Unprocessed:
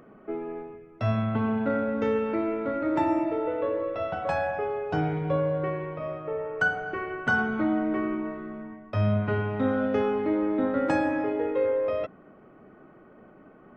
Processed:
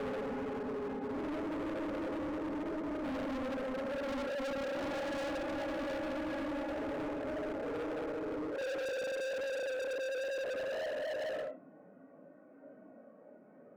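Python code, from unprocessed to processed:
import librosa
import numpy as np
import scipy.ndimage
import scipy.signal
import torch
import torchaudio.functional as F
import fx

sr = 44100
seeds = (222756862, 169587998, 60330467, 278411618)

y = fx.paulstretch(x, sr, seeds[0], factor=5.7, window_s=0.05, from_s=10.05)
y = fx.cabinet(y, sr, low_hz=240.0, low_slope=12, high_hz=2100.0, hz=(270.0, 380.0, 560.0, 830.0, 1200.0, 1900.0), db=(7, -9, 9, -3, -10, -4))
y = np.clip(10.0 ** (31.5 / 20.0) * y, -1.0, 1.0) / 10.0 ** (31.5 / 20.0)
y = F.gain(torch.from_numpy(y), -4.5).numpy()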